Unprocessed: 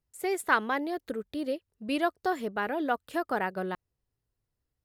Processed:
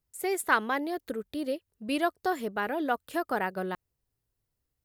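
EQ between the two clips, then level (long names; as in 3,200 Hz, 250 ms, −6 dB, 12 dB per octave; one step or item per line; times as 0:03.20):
high-shelf EQ 9,000 Hz +8 dB
0.0 dB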